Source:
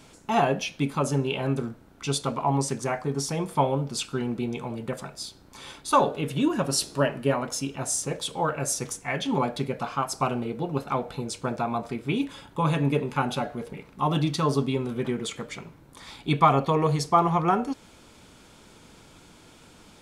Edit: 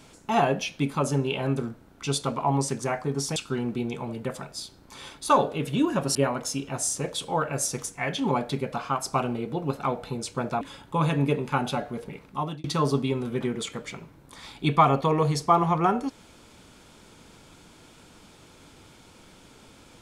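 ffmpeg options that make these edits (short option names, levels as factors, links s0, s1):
-filter_complex "[0:a]asplit=5[s0][s1][s2][s3][s4];[s0]atrim=end=3.362[s5];[s1]atrim=start=3.988:end=6.782[s6];[s2]atrim=start=7.218:end=11.682[s7];[s3]atrim=start=12.248:end=14.28,asetpts=PTS-STARTPTS,afade=t=out:st=1.652:d=0.38[s8];[s4]atrim=start=14.28,asetpts=PTS-STARTPTS,afade=t=in:d=0.004:c=hsin[s9];[s5][s6]acrossfade=d=0.004:c1=hsin:c2=hsin[s10];[s10][s7]acrossfade=d=0.004:c1=hsin:c2=hsin[s11];[s8][s9]concat=n=2:v=0:a=1[s12];[s11][s12]acrossfade=d=0.004:c1=hsin:c2=hsin"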